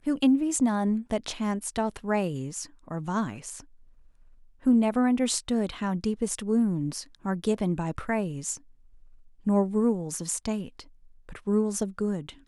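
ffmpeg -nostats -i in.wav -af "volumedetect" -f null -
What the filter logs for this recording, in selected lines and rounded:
mean_volume: -28.0 dB
max_volume: -10.5 dB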